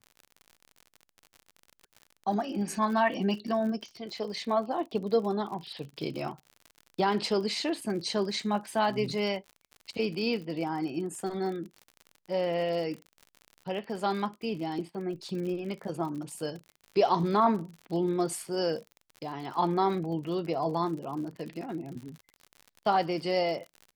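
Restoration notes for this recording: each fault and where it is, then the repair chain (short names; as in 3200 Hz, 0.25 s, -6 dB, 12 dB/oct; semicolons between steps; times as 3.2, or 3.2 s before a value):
crackle 57/s -38 dBFS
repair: de-click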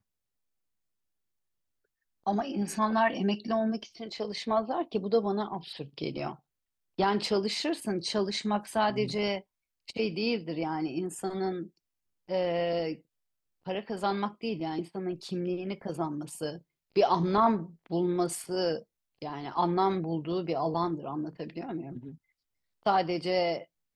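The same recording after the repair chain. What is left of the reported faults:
none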